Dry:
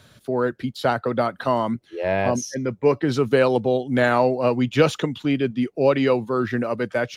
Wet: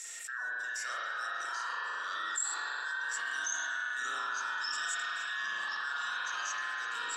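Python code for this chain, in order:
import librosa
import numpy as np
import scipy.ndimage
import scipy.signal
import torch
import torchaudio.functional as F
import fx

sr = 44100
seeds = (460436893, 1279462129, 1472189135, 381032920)

y = fx.band_invert(x, sr, width_hz=2000)
y = fx.bandpass_q(y, sr, hz=7500.0, q=11.0)
y = fx.echo_pitch(y, sr, ms=640, semitones=-3, count=2, db_per_echo=-6.0)
y = fx.rev_spring(y, sr, rt60_s=2.1, pass_ms=(40,), chirp_ms=20, drr_db=-8.0)
y = fx.env_flatten(y, sr, amount_pct=70)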